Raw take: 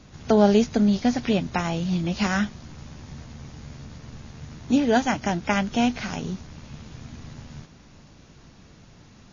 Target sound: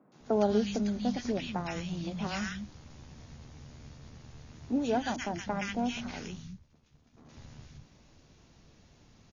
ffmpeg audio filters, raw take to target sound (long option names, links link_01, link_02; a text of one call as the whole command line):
ffmpeg -i in.wav -filter_complex "[0:a]asettb=1/sr,asplit=3[link_01][link_02][link_03];[link_01]atrim=end=5.044[link_04];[link_02]atrim=start=5.04:end=7.17,asetpts=PTS-STARTPTS,afade=type=in:duration=0.004:curve=qsin,afade=type=out:start_time=2.126:duration=0.004:curve=qsin,agate=range=-33dB:threshold=-29dB:ratio=3:detection=peak[link_05];[link_03]atrim=start=7.166[link_06];[link_04][link_05]acrossfade=duration=0.004:curve1=hsin:curve2=qsin[link_07];[link_07][link_06]acrossfade=duration=0.004:curve1=qsin:curve2=hsin,acrossover=split=180|1400[link_08][link_09][link_10];[link_10]adelay=120[link_11];[link_08]adelay=200[link_12];[link_12][link_09][link_11]amix=inputs=3:normalize=0,volume=-8dB" out.wav